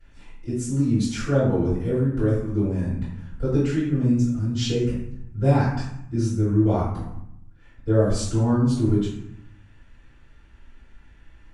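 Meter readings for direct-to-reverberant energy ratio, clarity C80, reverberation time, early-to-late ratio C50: -16.0 dB, 5.0 dB, 0.75 s, 1.5 dB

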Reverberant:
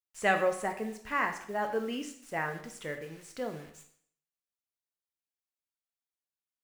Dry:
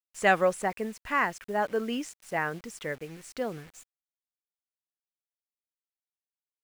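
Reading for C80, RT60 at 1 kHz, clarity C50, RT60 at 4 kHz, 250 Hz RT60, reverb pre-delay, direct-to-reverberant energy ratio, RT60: 12.0 dB, 0.60 s, 9.5 dB, 0.55 s, 0.60 s, 7 ms, 5.0 dB, 0.60 s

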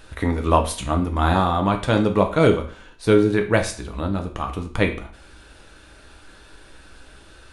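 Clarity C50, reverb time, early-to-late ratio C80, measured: 11.0 dB, 0.45 s, 15.0 dB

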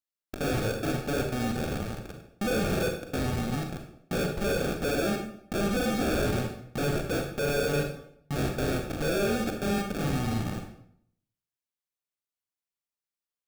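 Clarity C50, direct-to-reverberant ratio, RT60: 5.5 dB, 3.0 dB, 0.65 s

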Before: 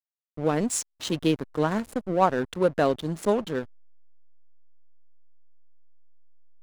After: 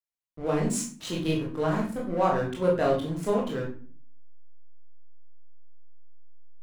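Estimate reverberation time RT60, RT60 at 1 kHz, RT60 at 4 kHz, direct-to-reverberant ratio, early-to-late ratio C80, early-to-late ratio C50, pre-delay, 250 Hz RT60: 0.45 s, 0.40 s, 0.30 s, -3.5 dB, 11.0 dB, 6.0 dB, 18 ms, 0.70 s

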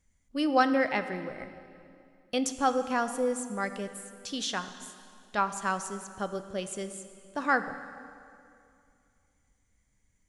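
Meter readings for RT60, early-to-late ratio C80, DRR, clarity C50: 2.5 s, 11.5 dB, 9.5 dB, 11.0 dB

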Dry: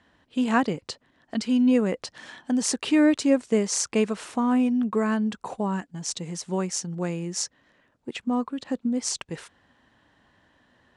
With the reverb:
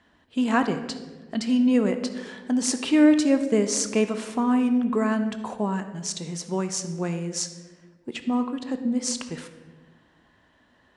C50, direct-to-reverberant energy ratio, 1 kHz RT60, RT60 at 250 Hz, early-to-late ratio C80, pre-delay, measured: 10.0 dB, 7.5 dB, 1.1 s, 1.7 s, 11.5 dB, 3 ms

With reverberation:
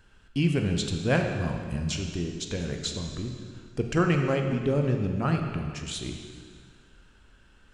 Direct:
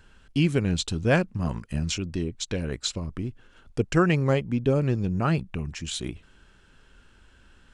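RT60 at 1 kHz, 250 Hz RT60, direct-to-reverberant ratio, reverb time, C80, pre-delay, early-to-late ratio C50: 2.0 s, 2.0 s, 3.0 dB, 2.0 s, 5.5 dB, 11 ms, 4.5 dB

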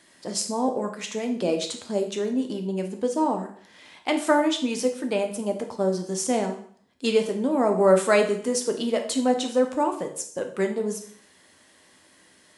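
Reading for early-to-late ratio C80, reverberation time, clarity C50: 13.5 dB, 0.55 s, 9.0 dB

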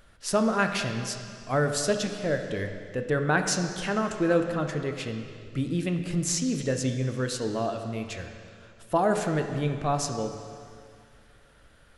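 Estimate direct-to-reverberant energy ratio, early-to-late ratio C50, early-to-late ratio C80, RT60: 5.0 dB, 6.5 dB, 7.5 dB, 2.2 s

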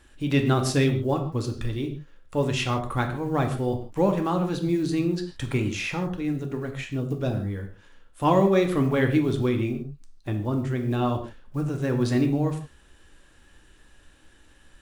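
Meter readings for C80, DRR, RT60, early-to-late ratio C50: 12.5 dB, 4.0 dB, not exponential, 9.5 dB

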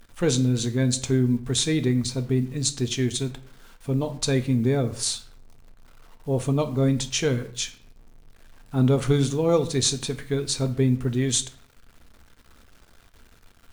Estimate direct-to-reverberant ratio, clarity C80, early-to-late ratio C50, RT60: 8.0 dB, 18.5 dB, 14.5 dB, 0.55 s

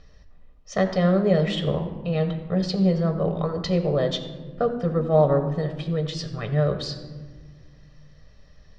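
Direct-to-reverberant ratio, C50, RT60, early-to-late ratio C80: 5.0 dB, 9.0 dB, 1.6 s, 10.0 dB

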